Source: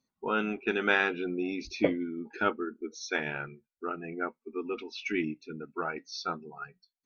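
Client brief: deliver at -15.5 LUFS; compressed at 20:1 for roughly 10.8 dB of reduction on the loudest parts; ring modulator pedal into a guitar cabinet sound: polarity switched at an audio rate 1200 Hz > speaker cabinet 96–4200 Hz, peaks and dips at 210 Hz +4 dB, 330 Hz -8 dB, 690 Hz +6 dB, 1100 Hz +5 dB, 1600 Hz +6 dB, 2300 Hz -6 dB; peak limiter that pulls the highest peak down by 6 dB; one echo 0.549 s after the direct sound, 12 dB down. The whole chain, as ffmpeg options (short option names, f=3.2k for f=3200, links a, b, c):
-af "acompressor=threshold=-29dB:ratio=20,alimiter=level_in=1.5dB:limit=-24dB:level=0:latency=1,volume=-1.5dB,aecho=1:1:549:0.251,aeval=exprs='val(0)*sgn(sin(2*PI*1200*n/s))':c=same,highpass=96,equalizer=f=210:t=q:w=4:g=4,equalizer=f=330:t=q:w=4:g=-8,equalizer=f=690:t=q:w=4:g=6,equalizer=f=1.1k:t=q:w=4:g=5,equalizer=f=1.6k:t=q:w=4:g=6,equalizer=f=2.3k:t=q:w=4:g=-6,lowpass=f=4.2k:w=0.5412,lowpass=f=4.2k:w=1.3066,volume=19dB"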